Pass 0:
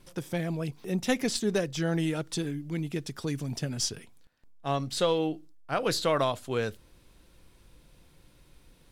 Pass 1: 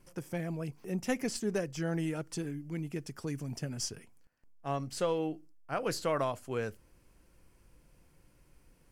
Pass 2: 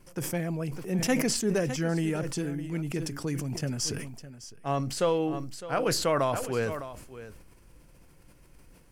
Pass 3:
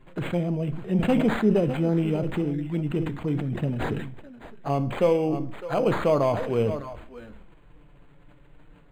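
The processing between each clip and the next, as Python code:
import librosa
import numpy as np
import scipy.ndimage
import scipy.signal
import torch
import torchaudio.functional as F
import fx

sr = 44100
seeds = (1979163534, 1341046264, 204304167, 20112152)

y1 = fx.peak_eq(x, sr, hz=3700.0, db=-14.5, octaves=0.35)
y1 = F.gain(torch.from_numpy(y1), -5.0).numpy()
y2 = y1 + 10.0 ** (-15.0 / 20.0) * np.pad(y1, (int(608 * sr / 1000.0), 0))[:len(y1)]
y2 = fx.sustainer(y2, sr, db_per_s=48.0)
y2 = F.gain(torch.from_numpy(y2), 5.0).numpy()
y3 = fx.env_flanger(y2, sr, rest_ms=8.6, full_db=-27.5)
y3 = fx.rev_fdn(y3, sr, rt60_s=0.62, lf_ratio=0.9, hf_ratio=0.7, size_ms=28.0, drr_db=12.0)
y3 = np.interp(np.arange(len(y3)), np.arange(len(y3))[::8], y3[::8])
y3 = F.gain(torch.from_numpy(y3), 6.0).numpy()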